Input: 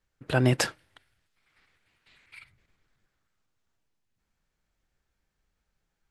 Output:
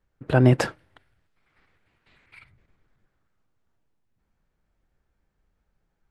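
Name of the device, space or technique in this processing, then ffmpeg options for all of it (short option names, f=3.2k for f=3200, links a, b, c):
through cloth: -af "highshelf=f=2.1k:g=-14,volume=6.5dB"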